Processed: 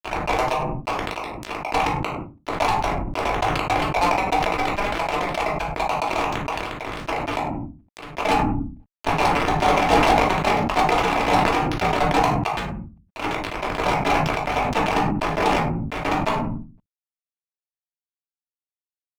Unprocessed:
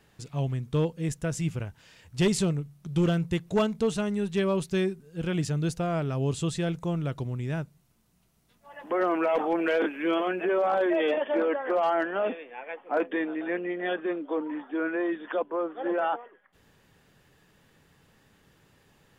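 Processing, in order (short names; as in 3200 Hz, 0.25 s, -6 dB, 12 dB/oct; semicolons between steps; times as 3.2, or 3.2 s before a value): slices in reverse order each 0.137 s, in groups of 6; spectral gate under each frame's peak -30 dB weak; notches 60/120/180/240 Hz; limiter -40 dBFS, peak gain reduction 11.5 dB; ladder low-pass 890 Hz, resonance 65%; fuzz box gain 61 dB, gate -59 dBFS; reverb RT60 0.25 s, pre-delay 3 ms, DRR -3 dB; sustainer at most 26 dB/s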